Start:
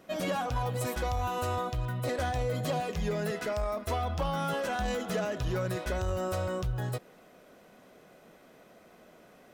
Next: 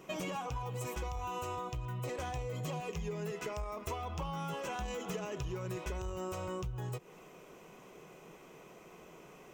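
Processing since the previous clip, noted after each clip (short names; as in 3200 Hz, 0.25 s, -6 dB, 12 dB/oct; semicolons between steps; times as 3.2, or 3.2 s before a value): ripple EQ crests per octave 0.73, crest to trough 9 dB; compressor 6:1, threshold -38 dBFS, peak gain reduction 13 dB; gain +1.5 dB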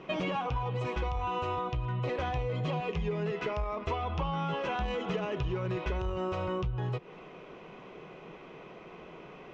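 LPF 4000 Hz 24 dB/oct; gain +6.5 dB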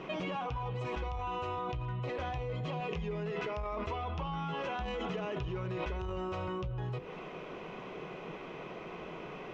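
de-hum 50.34 Hz, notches 11; in parallel at 0 dB: negative-ratio compressor -39 dBFS, ratio -0.5; on the sum: gain -6 dB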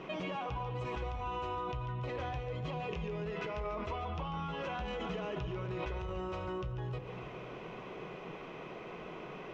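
split-band echo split 390 Hz, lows 0.288 s, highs 0.143 s, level -10.5 dB; gain -2 dB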